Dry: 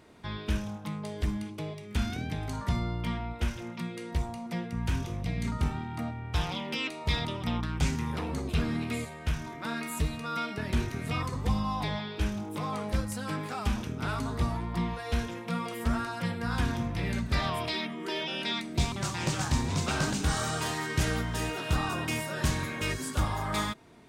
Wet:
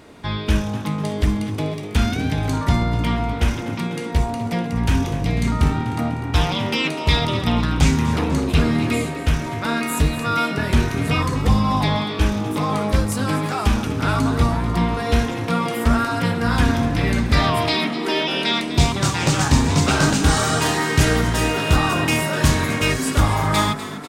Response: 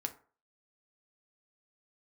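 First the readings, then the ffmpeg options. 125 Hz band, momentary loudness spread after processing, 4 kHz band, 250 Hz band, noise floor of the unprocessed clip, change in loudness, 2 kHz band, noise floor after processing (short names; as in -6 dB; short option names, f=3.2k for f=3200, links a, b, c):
+12.0 dB, 5 LU, +11.5 dB, +12.5 dB, -42 dBFS, +12.0 dB, +11.5 dB, -28 dBFS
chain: -filter_complex "[0:a]asplit=8[a][b][c][d][e][f][g][h];[b]adelay=248,afreqshift=48,volume=-13dB[i];[c]adelay=496,afreqshift=96,volume=-17dB[j];[d]adelay=744,afreqshift=144,volume=-21dB[k];[e]adelay=992,afreqshift=192,volume=-25dB[l];[f]adelay=1240,afreqshift=240,volume=-29.1dB[m];[g]adelay=1488,afreqshift=288,volume=-33.1dB[n];[h]adelay=1736,afreqshift=336,volume=-37.1dB[o];[a][i][j][k][l][m][n][o]amix=inputs=8:normalize=0,asplit=2[p][q];[1:a]atrim=start_sample=2205[r];[q][r]afir=irnorm=-1:irlink=0,volume=3dB[s];[p][s]amix=inputs=2:normalize=0,volume=4dB"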